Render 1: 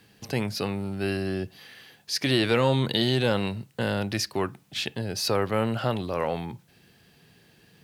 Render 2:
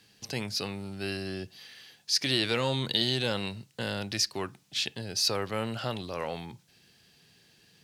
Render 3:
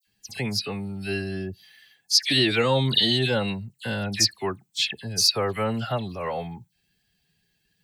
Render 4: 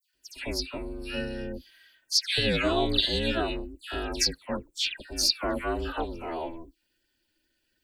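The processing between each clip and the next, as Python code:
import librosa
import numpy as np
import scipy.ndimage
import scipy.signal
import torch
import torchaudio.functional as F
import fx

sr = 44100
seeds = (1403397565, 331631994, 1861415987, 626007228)

y1 = fx.peak_eq(x, sr, hz=5500.0, db=10.5, octaves=2.1)
y1 = y1 * 10.0 ** (-7.5 / 20.0)
y2 = fx.bin_expand(y1, sr, power=1.5)
y2 = fx.dispersion(y2, sr, late='lows', ms=70.0, hz=2500.0)
y2 = y2 * 10.0 ** (9.0 / 20.0)
y3 = fx.notch_comb(y2, sr, f0_hz=1000.0)
y3 = y3 * np.sin(2.0 * np.pi * 160.0 * np.arange(len(y3)) / sr)
y3 = fx.dispersion(y3, sr, late='lows', ms=71.0, hz=1700.0)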